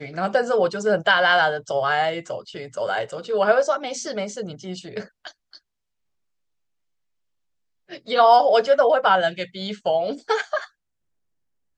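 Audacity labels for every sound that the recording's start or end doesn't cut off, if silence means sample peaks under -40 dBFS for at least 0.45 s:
7.900000	10.660000	sound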